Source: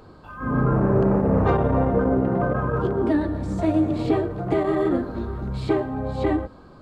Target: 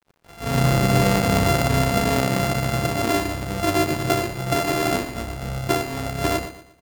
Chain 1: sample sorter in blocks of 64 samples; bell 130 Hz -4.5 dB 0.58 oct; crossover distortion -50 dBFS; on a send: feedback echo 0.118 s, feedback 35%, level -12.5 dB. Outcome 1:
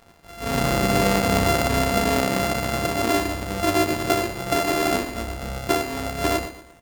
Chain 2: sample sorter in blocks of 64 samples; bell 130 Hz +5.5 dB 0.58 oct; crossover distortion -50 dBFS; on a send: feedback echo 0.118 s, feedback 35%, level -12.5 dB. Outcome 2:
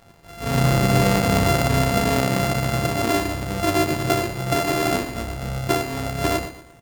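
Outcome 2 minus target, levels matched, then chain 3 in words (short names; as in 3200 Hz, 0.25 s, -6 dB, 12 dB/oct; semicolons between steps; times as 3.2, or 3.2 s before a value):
crossover distortion: distortion -9 dB
sample sorter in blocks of 64 samples; bell 130 Hz +5.5 dB 0.58 oct; crossover distortion -40.5 dBFS; on a send: feedback echo 0.118 s, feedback 35%, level -12.5 dB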